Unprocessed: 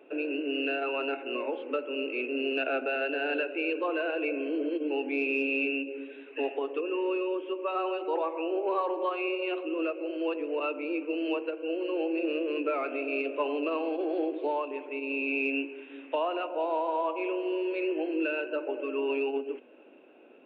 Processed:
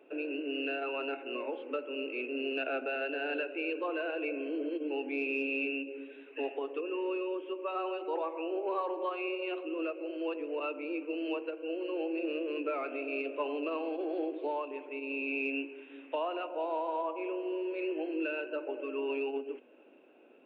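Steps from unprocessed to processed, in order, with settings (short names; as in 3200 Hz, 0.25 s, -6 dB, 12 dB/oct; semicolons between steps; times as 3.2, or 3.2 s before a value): 17.02–17.79 high shelf 4000 Hz -12 dB; gain -4.5 dB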